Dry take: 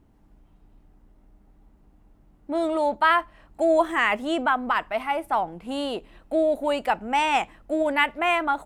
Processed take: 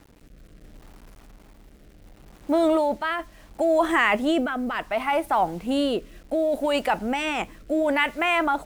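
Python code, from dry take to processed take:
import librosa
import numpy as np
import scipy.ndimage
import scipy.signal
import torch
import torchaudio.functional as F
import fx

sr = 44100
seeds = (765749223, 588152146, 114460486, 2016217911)

p1 = fx.over_compress(x, sr, threshold_db=-25.0, ratio=-0.5)
p2 = x + (p1 * librosa.db_to_amplitude(0.0))
p3 = fx.quant_dither(p2, sr, seeds[0], bits=8, dither='none')
p4 = fx.rotary(p3, sr, hz=0.7)
y = p4 * librosa.db_to_amplitude(-1.0)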